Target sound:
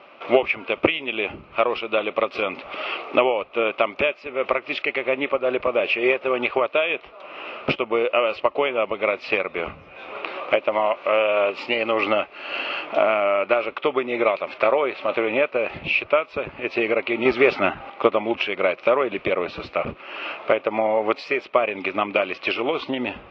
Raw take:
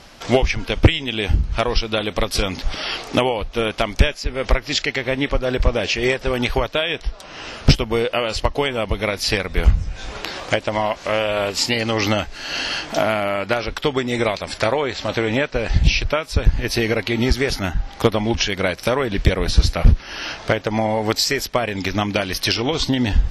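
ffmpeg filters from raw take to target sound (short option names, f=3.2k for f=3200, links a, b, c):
-filter_complex "[0:a]asettb=1/sr,asplit=3[a][b][c];[a]atrim=end=17.254[d];[b]atrim=start=17.25:end=17.9,asetpts=PTS-STARTPTS,afade=t=in:d=0.004:c=qsin,afade=t=out:st=0.646:d=0.004:c=qsin,acontrast=86[e];[c]atrim=start=17.896[f];[d][e]acrossfade=d=0.004:c1=hsin:c2=qsin[g];[g][f]acrossfade=d=0.004:c1=qsin:c2=hsin,highpass=320,equalizer=f=370:t=q:w=4:g=5,equalizer=f=580:t=q:w=4:g=7,equalizer=f=1.2k:t=q:w=4:g=9,equalizer=f=1.7k:t=q:w=4:g=-8,equalizer=f=2.5k:t=q:w=4:g=9,lowpass=f=2.8k:w=0.5412,lowpass=f=2.8k:w=1.3066,volume=-3.5dB"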